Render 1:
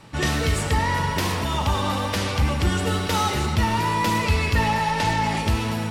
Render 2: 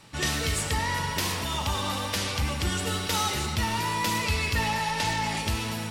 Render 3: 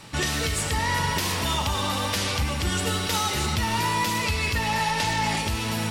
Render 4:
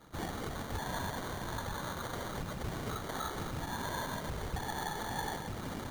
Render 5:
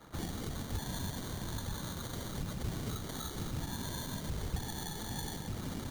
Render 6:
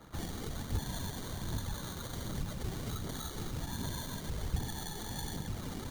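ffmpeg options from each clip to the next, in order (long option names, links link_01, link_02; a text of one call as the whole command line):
ffmpeg -i in.wav -af "highshelf=frequency=2300:gain=9.5,volume=-7.5dB" out.wav
ffmpeg -i in.wav -af "alimiter=limit=-22.5dB:level=0:latency=1:release=494,volume=7.5dB" out.wav
ffmpeg -i in.wav -af "afftfilt=real='hypot(re,im)*cos(2*PI*random(0))':imag='hypot(re,im)*sin(2*PI*random(1))':win_size=512:overlap=0.75,acrusher=samples=17:mix=1:aa=0.000001,volume=-7dB" out.wav
ffmpeg -i in.wav -filter_complex "[0:a]acrossover=split=330|3000[link_01][link_02][link_03];[link_02]acompressor=threshold=-51dB:ratio=5[link_04];[link_01][link_04][link_03]amix=inputs=3:normalize=0,volume=2.5dB" out.wav
ffmpeg -i in.wav -af "flanger=delay=0:depth=2.8:regen=67:speed=1.3:shape=triangular,volume=4dB" out.wav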